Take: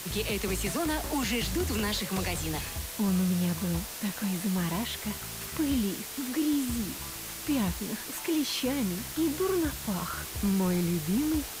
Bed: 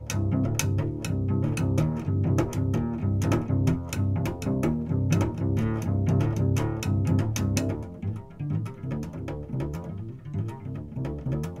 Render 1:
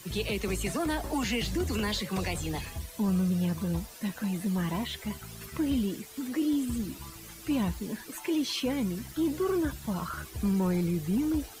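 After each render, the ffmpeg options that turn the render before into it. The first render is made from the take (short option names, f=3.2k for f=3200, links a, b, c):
-af "afftdn=nr=12:nf=-40"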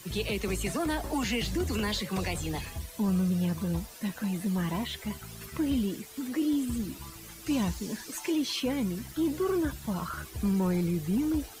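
-filter_complex "[0:a]asettb=1/sr,asplit=3[a][b][c];[a]atrim=end=7.464[d];[b]atrim=start=7.46:end=8.32,asetpts=PTS-STARTPTS,afade=t=in:d=0.004:c=qsin,afade=t=out:st=0.856:d=0.004:c=qsin,equalizer=f=5.9k:t=o:w=1.1:g=7.5[e];[c]atrim=start=8.316[f];[d][e]acrossfade=d=0.004:c1=hsin:c2=qsin[g];[g][f]acrossfade=d=0.004:c1=qsin:c2=hsin"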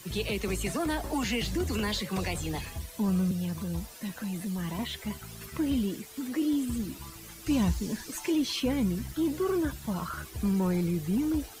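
-filter_complex "[0:a]asettb=1/sr,asplit=3[a][b][c];[a]atrim=end=3.314[d];[b]atrim=start=3.31:end=4.79,asetpts=PTS-STARTPTS,afade=t=in:d=0.004:c=qsin,afade=t=out:st=1.476:d=0.004:c=qsin,acrossover=split=130|3000[e][f][g];[f]acompressor=threshold=-34dB:ratio=3:attack=3.2:release=140:knee=2.83:detection=peak[h];[e][h][g]amix=inputs=3:normalize=0[i];[c]atrim=start=4.786[j];[d][i]acrossfade=d=0.004:c1=hsin:c2=qsin[k];[k][j]acrossfade=d=0.004:c1=qsin:c2=hsin,asettb=1/sr,asplit=3[l][m][n];[l]atrim=end=7.474[o];[m]atrim=start=7.47:end=9.15,asetpts=PTS-STARTPTS,afade=t=in:d=0.004:c=qsin,afade=t=out:st=1.676:d=0.004:c=qsin,lowshelf=f=130:g=10[p];[n]atrim=start=9.146[q];[o][p]acrossfade=d=0.004:c1=hsin:c2=qsin[r];[r][q]acrossfade=d=0.004:c1=qsin:c2=hsin"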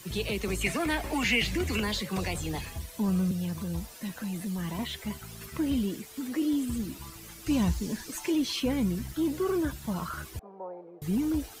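-filter_complex "[0:a]asettb=1/sr,asplit=3[a][b][c];[a]atrim=end=0.614[d];[b]atrim=start=0.61:end=1.8,asetpts=PTS-STARTPTS,afade=t=in:d=0.004:c=qsin,afade=t=out:st=1.186:d=0.004:c=qsin,equalizer=f=2.3k:w=1.9:g=11.5[e];[c]atrim=start=1.796[f];[d][e]acrossfade=d=0.004:c1=hsin:c2=qsin[g];[g][f]acrossfade=d=0.004:c1=qsin:c2=hsin,asettb=1/sr,asplit=3[h][i][j];[h]atrim=end=10.394[k];[i]atrim=start=10.39:end=11.02,asetpts=PTS-STARTPTS,afade=t=in:d=0.004:c=qsin,afade=t=out:st=0.626:d=0.004:c=qsin,asuperpass=centerf=670:order=4:qfactor=1.7[l];[j]atrim=start=11.016[m];[k][l]acrossfade=d=0.004:c1=hsin:c2=qsin[n];[n][m]acrossfade=d=0.004:c1=qsin:c2=hsin"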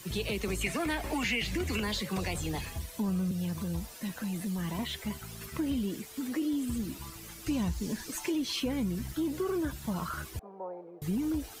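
-af "acompressor=threshold=-29dB:ratio=3"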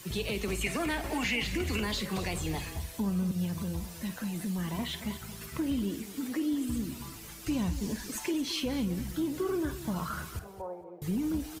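-filter_complex "[0:a]asplit=2[a][b];[b]adelay=50,volume=-13.5dB[c];[a][c]amix=inputs=2:normalize=0,aecho=1:1:224|448:0.2|0.0319"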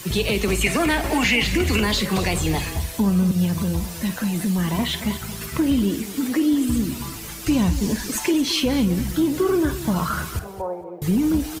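-af "volume=11.5dB"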